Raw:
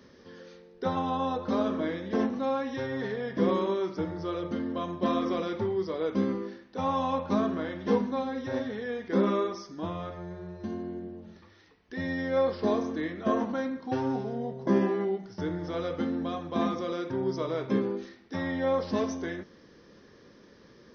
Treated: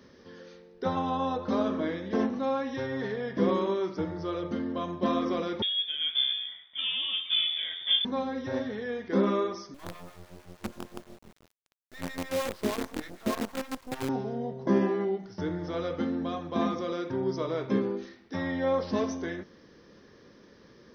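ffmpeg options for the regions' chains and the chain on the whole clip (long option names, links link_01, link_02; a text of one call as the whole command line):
ffmpeg -i in.wav -filter_complex "[0:a]asettb=1/sr,asplit=3[link_01][link_02][link_03];[link_01]atrim=end=5.624[link_04];[link_02]atrim=start=5.62:end=8.05,asetpts=PTS-STARTPTS,afade=type=in:duration=0.004:curve=qsin,afade=type=out:start_time=2.426:duration=0.004:curve=qsin,lowpass=frequency=3100:width_type=q:width=0.5098,lowpass=frequency=3100:width_type=q:width=0.6013,lowpass=frequency=3100:width_type=q:width=0.9,lowpass=frequency=3100:width_type=q:width=2.563,afreqshift=-3700,bandreject=frequency=2700:width=6[link_05];[link_03]atrim=start=8.046[link_06];[link_04][link_05]acrossfade=duration=0.004:curve1=hsin:curve2=qsin[link_07];[link_07][link_06]acrossfade=duration=0.004:curve1=qsin:curve2=hsin,asettb=1/sr,asplit=3[link_08][link_09][link_10];[link_08]atrim=end=9.744[link_11];[link_09]atrim=start=9.74:end=14.09,asetpts=PTS-STARTPTS,afade=type=in:duration=0.004:curve=qsin,afade=type=out:start_time=4.346:duration=0.004:curve=qsin,acrossover=split=690[link_12][link_13];[link_12]aeval=exprs='val(0)*(1-1/2+1/2*cos(2*PI*6.5*n/s))':channel_layout=same[link_14];[link_13]aeval=exprs='val(0)*(1-1/2-1/2*cos(2*PI*6.5*n/s))':channel_layout=same[link_15];[link_14][link_15]amix=inputs=2:normalize=0,acrusher=bits=6:dc=4:mix=0:aa=0.000001[link_16];[link_10]atrim=start=14.086[link_17];[link_11][link_16]acrossfade=duration=0.004:curve1=hsin:curve2=qsin[link_18];[link_18][link_17]acrossfade=duration=0.004:curve1=qsin:curve2=hsin" out.wav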